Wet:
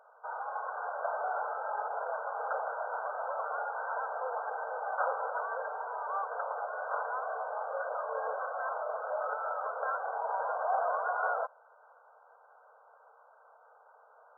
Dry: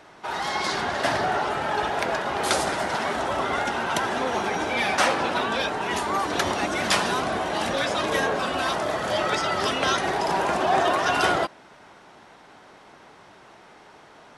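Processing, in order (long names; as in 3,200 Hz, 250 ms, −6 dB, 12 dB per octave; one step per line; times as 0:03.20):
linear-phase brick-wall band-pass 440–1,600 Hz
level −8.5 dB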